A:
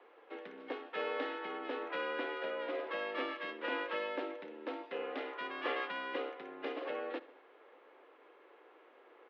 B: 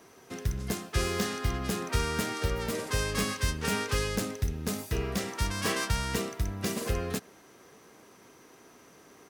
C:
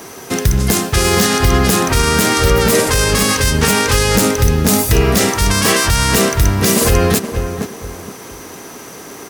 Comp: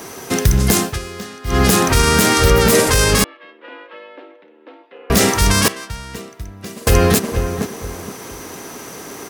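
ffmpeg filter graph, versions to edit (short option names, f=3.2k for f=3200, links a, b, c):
-filter_complex "[1:a]asplit=2[a][b];[2:a]asplit=4[c][d][e][f];[c]atrim=end=0.99[g];[a]atrim=start=0.83:end=1.61[h];[d]atrim=start=1.45:end=3.242[i];[0:a]atrim=start=3.238:end=5.102[j];[e]atrim=start=5.098:end=5.682[k];[b]atrim=start=5.678:end=6.872[l];[f]atrim=start=6.868[m];[g][h]acrossfade=d=0.16:c1=tri:c2=tri[n];[n][i]acrossfade=d=0.16:c1=tri:c2=tri[o];[o][j]acrossfade=d=0.004:c1=hsin:c2=hsin[p];[p][k]acrossfade=d=0.004:c1=hsin:c2=hsin[q];[q][l]acrossfade=d=0.004:c1=hsin:c2=hsin[r];[r][m]acrossfade=d=0.004:c1=hsin:c2=hsin"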